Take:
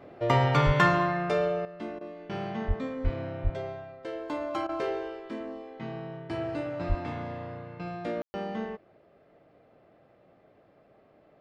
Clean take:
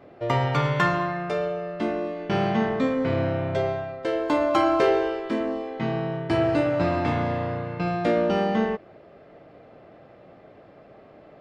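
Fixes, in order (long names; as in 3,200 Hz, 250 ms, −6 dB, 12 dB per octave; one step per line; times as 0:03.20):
high-pass at the plosives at 0:00.65/0:02.67/0:03.03/0:03.43/0:06.88
ambience match 0:08.22–0:08.34
repair the gap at 0:01.99/0:04.67, 19 ms
level 0 dB, from 0:01.65 +11 dB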